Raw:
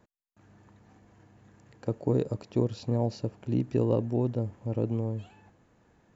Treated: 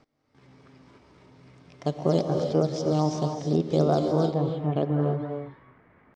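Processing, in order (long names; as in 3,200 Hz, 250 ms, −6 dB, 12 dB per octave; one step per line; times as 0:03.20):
in parallel at −8 dB: sample-and-hold swept by an LFO 9×, swing 160% 3.8 Hz
on the sum: pitch shifter +4.5 semitones
reverb whose tail is shaped and stops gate 340 ms rising, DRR 3.5 dB
low-pass filter sweep 5,200 Hz → 1,800 Hz, 0:04.21–0:05.01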